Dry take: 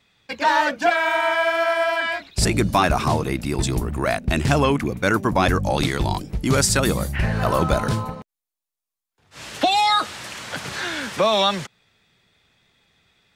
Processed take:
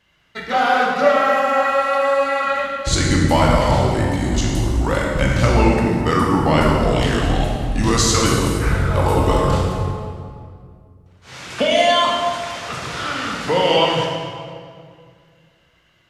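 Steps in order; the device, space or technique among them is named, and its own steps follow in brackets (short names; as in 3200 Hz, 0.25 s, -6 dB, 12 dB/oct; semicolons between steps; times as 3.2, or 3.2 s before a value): slowed and reverbed (varispeed -17%; reverb RT60 2.2 s, pre-delay 15 ms, DRR -2.5 dB); gain -1 dB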